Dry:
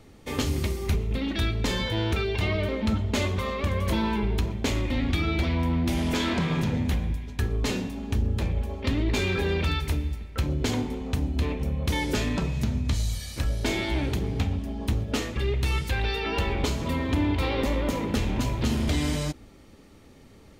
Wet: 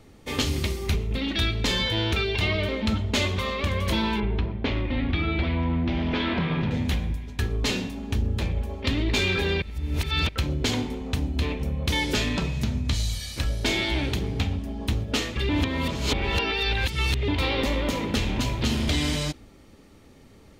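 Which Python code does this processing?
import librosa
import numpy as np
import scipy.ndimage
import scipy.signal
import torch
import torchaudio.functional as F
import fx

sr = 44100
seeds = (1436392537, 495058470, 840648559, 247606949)

y = fx.gaussian_blur(x, sr, sigma=2.6, at=(4.2, 6.71))
y = fx.edit(y, sr, fx.reverse_span(start_s=9.62, length_s=0.67),
    fx.reverse_span(start_s=15.49, length_s=1.79), tone=tone)
y = fx.dynamic_eq(y, sr, hz=3500.0, q=0.77, threshold_db=-46.0, ratio=4.0, max_db=7)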